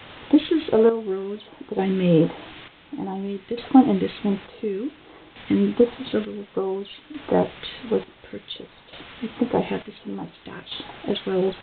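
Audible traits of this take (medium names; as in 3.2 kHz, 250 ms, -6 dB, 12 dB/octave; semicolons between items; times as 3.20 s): phasing stages 2, 1.4 Hz, lowest notch 760–2700 Hz; a quantiser's noise floor 6-bit, dither triangular; chopped level 0.56 Hz, depth 65%, duty 50%; A-law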